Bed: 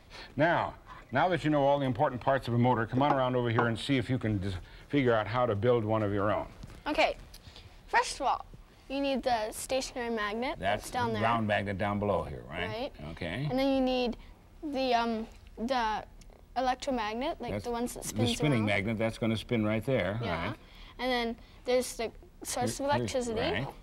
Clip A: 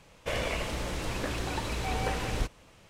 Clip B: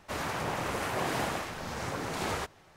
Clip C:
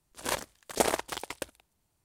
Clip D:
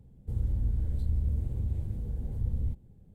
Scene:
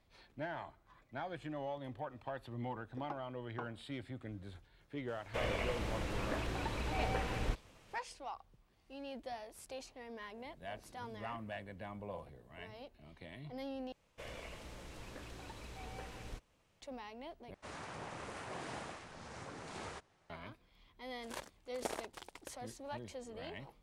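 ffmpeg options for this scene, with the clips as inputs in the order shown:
-filter_complex "[1:a]asplit=2[a][b];[0:a]volume=-16dB[c];[a]acrossover=split=3500[d][e];[e]acompressor=threshold=-49dB:ratio=4:attack=1:release=60[f];[d][f]amix=inputs=2:normalize=0[g];[4:a]highpass=320[h];[2:a]aresample=22050,aresample=44100[i];[3:a]highshelf=f=8.9k:g=-8[j];[c]asplit=3[k][l][m];[k]atrim=end=13.924[n];[b]atrim=end=2.89,asetpts=PTS-STARTPTS,volume=-17dB[o];[l]atrim=start=16.806:end=17.544[p];[i]atrim=end=2.76,asetpts=PTS-STARTPTS,volume=-13.5dB[q];[m]atrim=start=20.296[r];[g]atrim=end=2.89,asetpts=PTS-STARTPTS,volume=-5.5dB,afade=t=in:d=0.004:c=hsin,afade=t=out:st=2.886:d=0.004:c=hsin,adelay=5080[s];[h]atrim=end=3.14,asetpts=PTS-STARTPTS,volume=-15.5dB,afade=t=in:d=0.004:c=hsin,afade=t=out:st=3.136:d=0.004:c=hsin,adelay=445410S[t];[j]atrim=end=2.04,asetpts=PTS-STARTPTS,volume=-14dB,afade=t=in:d=0.004:c=hsin,afade=t=out:st=2.036:d=0.004:c=hsin,adelay=21050[u];[n][o]acrossfade=d=0.004:c1=hsin:c2=hsin[v];[v][p]acrossfade=d=0.004:c1=hsin:c2=hsin[w];[w][q]acrossfade=d=0.004:c1=hsin:c2=hsin[x];[x][r]acrossfade=d=0.004:c1=hsin:c2=hsin[y];[y][s][t][u]amix=inputs=4:normalize=0"

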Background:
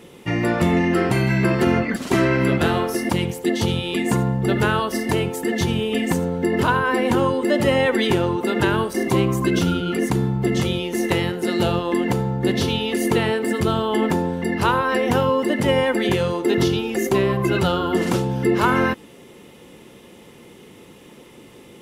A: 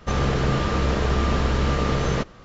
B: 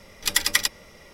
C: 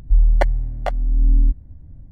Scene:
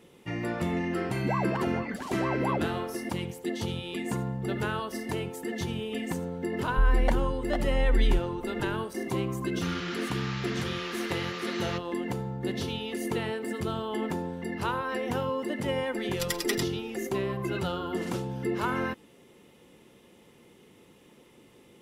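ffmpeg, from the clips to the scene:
-filter_complex "[3:a]asplit=2[a][b];[0:a]volume=-11.5dB[c];[a]aeval=exprs='val(0)*sin(2*PI*680*n/s+680*0.65/4.4*sin(2*PI*4.4*n/s))':c=same[d];[1:a]asuperpass=centerf=3000:order=4:qfactor=0.68[e];[2:a]aecho=1:1:5.8:0.68[f];[d]atrim=end=2.11,asetpts=PTS-STARTPTS,volume=-16.5dB,afade=t=in:d=0.004:c=hsin,afade=t=out:st=2.106:d=0.004:c=hsin,adelay=1140[g];[b]atrim=end=2.11,asetpts=PTS-STARTPTS,volume=-9dB,afade=t=in:d=0.004:c=hsin,afade=t=out:st=2.106:d=0.004:c=hsin,adelay=6670[h];[e]atrim=end=2.44,asetpts=PTS-STARTPTS,volume=-5dB,afade=t=in:d=0.004:c=hsin,afade=t=out:st=2.436:d=0.004:c=hsin,adelay=9550[i];[f]atrim=end=1.13,asetpts=PTS-STARTPTS,volume=-12.5dB,afade=t=in:d=0.004:c=hsin,afade=t=out:st=1.126:d=0.004:c=hsin,adelay=15940[j];[c][g][h][i][j]amix=inputs=5:normalize=0"

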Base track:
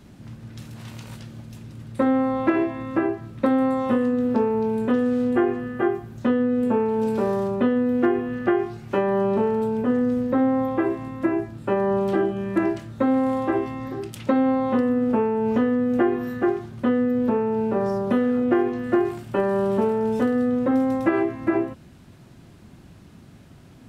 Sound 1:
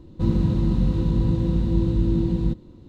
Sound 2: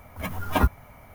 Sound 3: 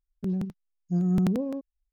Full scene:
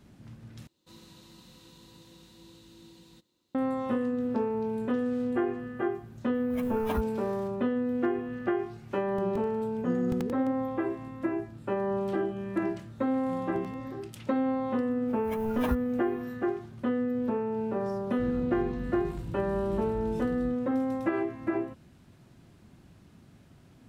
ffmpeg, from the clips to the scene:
-filter_complex "[1:a]asplit=2[a][b];[2:a]asplit=2[c][d];[3:a]asplit=2[e][f];[0:a]volume=-8dB[g];[a]aderivative[h];[c]acontrast=54[i];[e]aecho=1:1:2.4:0.65[j];[g]asplit=2[k][l];[k]atrim=end=0.674[m];[h]atrim=end=2.88,asetpts=PTS-STARTPTS,volume=-2dB[n];[l]atrim=start=3.546[o];[i]atrim=end=1.14,asetpts=PTS-STARTPTS,volume=-17dB,afade=t=in:d=0.004:c=hsin,afade=t=out:st=1.136:d=0.004:c=hsin,adelay=279594S[p];[j]atrim=end=1.92,asetpts=PTS-STARTPTS,volume=-5.5dB,afade=t=in:d=0.004:c=hsin,afade=t=out:st=1.916:d=0.004:c=hsin,adelay=8940[q];[f]atrim=end=1.92,asetpts=PTS-STARTPTS,volume=-17.5dB,afade=t=in:d=0.004:c=hsin,afade=t=out:st=1.916:d=0.004:c=hsin,adelay=12380[r];[d]atrim=end=1.14,asetpts=PTS-STARTPTS,volume=-10.5dB,afade=t=in:d=0.004:c=hsin,afade=t=out:st=1.136:d=0.004:c=hsin,adelay=665028S[s];[b]atrim=end=2.88,asetpts=PTS-STARTPTS,volume=-17.5dB,afade=t=in:d=0.004:c=hsin,afade=t=out:st=2.876:d=0.004:c=hsin,adelay=17990[t];[m][n]acrossfade=d=0.004:c1=hsin:c2=hsin[u];[u][o]acrossfade=d=0.004:c1=hsin:c2=hsin[v];[v][p][q][r][s][t]amix=inputs=6:normalize=0"

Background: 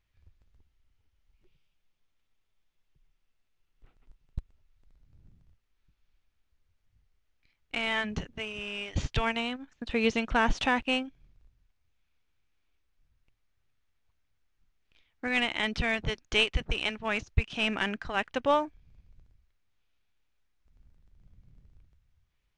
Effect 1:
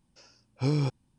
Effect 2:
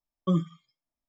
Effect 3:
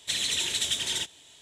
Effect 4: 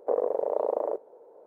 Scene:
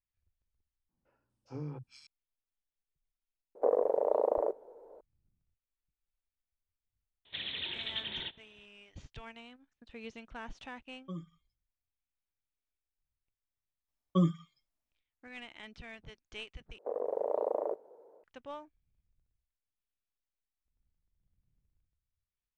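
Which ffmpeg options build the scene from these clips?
-filter_complex "[4:a]asplit=2[a][b];[2:a]asplit=2[c][d];[0:a]volume=-19.5dB[e];[1:a]acrossover=split=150|2000[f][g][h];[f]adelay=40[i];[h]adelay=410[j];[i][g][j]amix=inputs=3:normalize=0[k];[3:a]aresample=8000,aresample=44100[l];[b]dynaudnorm=f=110:g=5:m=7dB[m];[e]asplit=3[n][o][p];[n]atrim=end=0.894[q];[k]atrim=end=1.18,asetpts=PTS-STARTPTS,volume=-13dB[r];[o]atrim=start=2.066:end=16.784[s];[m]atrim=end=1.46,asetpts=PTS-STARTPTS,volume=-11.5dB[t];[p]atrim=start=18.236[u];[a]atrim=end=1.46,asetpts=PTS-STARTPTS,volume=-1.5dB,afade=t=in:d=0.004:c=hsin,afade=t=out:st=1.456:d=0.004:c=hsin,adelay=3550[v];[l]atrim=end=1.41,asetpts=PTS-STARTPTS,volume=-7.5dB,afade=t=in:d=0.004:c=hsin,afade=t=out:st=1.406:d=0.004:c=hsin,adelay=7250[w];[c]atrim=end=1.08,asetpts=PTS-STARTPTS,volume=-17.5dB,afade=t=in:d=0.004:c=hsin,afade=t=out:st=1.076:d=0.004:c=hsin,adelay=10810[x];[d]atrim=end=1.08,asetpts=PTS-STARTPTS,volume=-2dB,afade=t=in:d=0.004:c=hsin,afade=t=out:st=1.076:d=0.004:c=hsin,adelay=13880[y];[q][r]acrossfade=d=0.004:c1=hsin:c2=hsin[z];[z][s]acrossfade=d=0.004:c1=hsin:c2=hsin[aa];[aa][t]acrossfade=d=0.004:c1=hsin:c2=hsin[ab];[ab][u]acrossfade=d=0.004:c1=hsin:c2=hsin[ac];[ac][v][w][x][y]amix=inputs=5:normalize=0"

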